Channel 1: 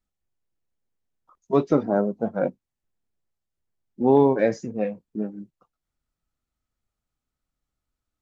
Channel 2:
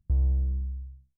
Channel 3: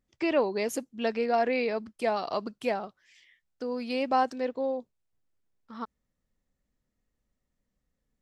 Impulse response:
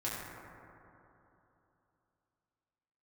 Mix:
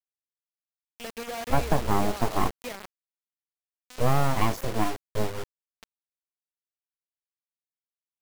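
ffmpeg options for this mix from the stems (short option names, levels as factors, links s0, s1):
-filter_complex "[0:a]lowshelf=f=190:g=5,acompressor=threshold=0.112:ratio=6,aeval=exprs='abs(val(0))':c=same,volume=1.33[s0];[1:a]adelay=1400,volume=0.237[s1];[2:a]acompressor=threshold=0.0316:ratio=4,volume=0.531,afade=t=in:st=0.81:d=0.34:silence=0.281838,afade=t=out:st=2.9:d=0.39:silence=0.473151,asplit=2[s2][s3];[s3]volume=0.2[s4];[3:a]atrim=start_sample=2205[s5];[s4][s5]afir=irnorm=-1:irlink=0[s6];[s0][s1][s2][s6]amix=inputs=4:normalize=0,acrusher=bits=5:mix=0:aa=0.000001"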